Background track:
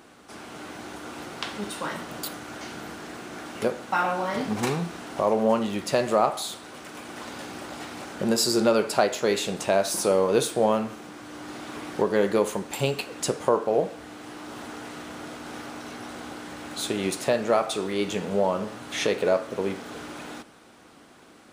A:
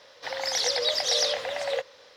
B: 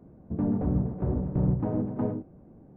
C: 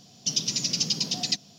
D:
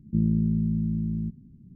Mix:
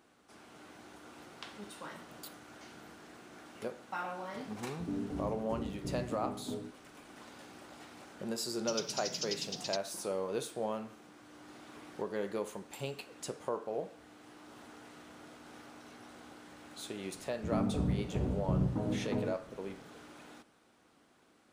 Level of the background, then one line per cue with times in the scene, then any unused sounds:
background track −14.5 dB
0:04.49: mix in B −16 dB + hollow resonant body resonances 280/400 Hz, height 13 dB, ringing for 100 ms
0:08.41: mix in C −13 dB
0:17.13: mix in B −6 dB
not used: A, D

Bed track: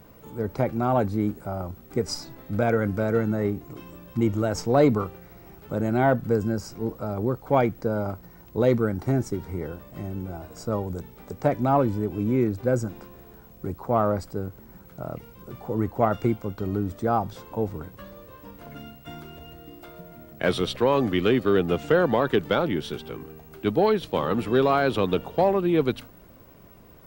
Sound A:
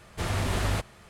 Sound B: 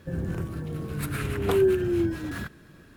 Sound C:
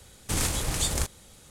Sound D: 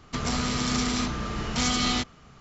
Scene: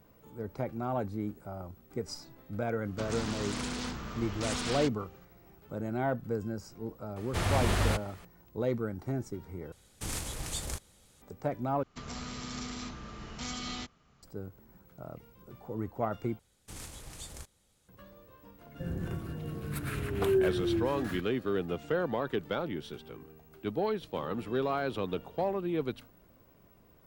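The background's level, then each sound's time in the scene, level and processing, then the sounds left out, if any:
bed track −10.5 dB
0:02.85: mix in D −9.5 dB + highs frequency-modulated by the lows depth 0.62 ms
0:07.16: mix in A −0.5 dB
0:09.72: overwrite with C −9.5 dB
0:11.83: overwrite with D −13.5 dB
0:16.39: overwrite with C −18 dB
0:18.73: mix in B −5.5 dB, fades 0.05 s

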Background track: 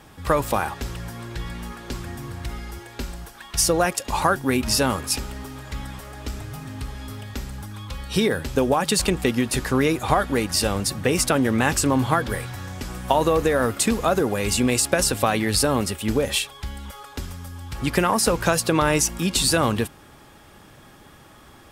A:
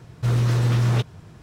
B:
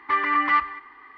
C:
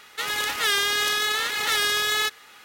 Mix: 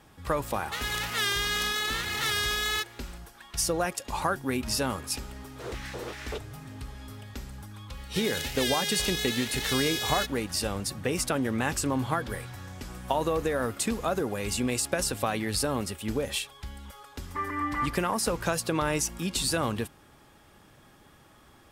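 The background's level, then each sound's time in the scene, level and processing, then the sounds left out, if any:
background track −8 dB
0:00.54: mix in C −5.5 dB
0:05.36: mix in A −9.5 dB + auto-filter high-pass square 2.6 Hz 420–1,900 Hz
0:07.97: mix in C −5 dB + phaser with its sweep stopped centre 310 Hz, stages 6
0:17.26: mix in B −9 dB + spectral tilt −4.5 dB per octave

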